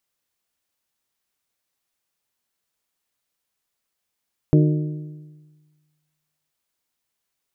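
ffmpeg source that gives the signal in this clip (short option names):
-f lavfi -i "aevalsrc='0.282*pow(10,-3*t/1.46)*sin(2*PI*152*t)+0.168*pow(10,-3*t/1.186)*sin(2*PI*304*t)+0.1*pow(10,-3*t/1.123)*sin(2*PI*364.8*t)+0.0596*pow(10,-3*t/1.05)*sin(2*PI*456*t)+0.0355*pow(10,-3*t/0.963)*sin(2*PI*608*t)':d=1.97:s=44100"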